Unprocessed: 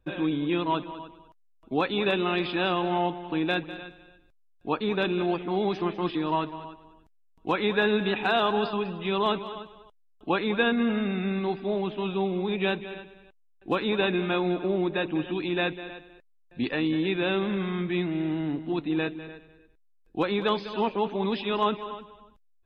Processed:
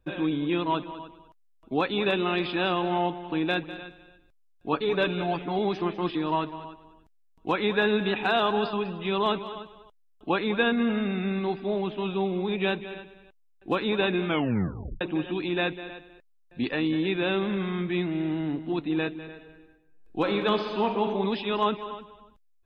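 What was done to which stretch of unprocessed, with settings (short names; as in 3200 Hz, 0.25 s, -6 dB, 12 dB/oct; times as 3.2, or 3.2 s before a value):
4.72–5.59 comb 7 ms
14.27 tape stop 0.74 s
19.3–21.05 reverb throw, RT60 1 s, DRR 5 dB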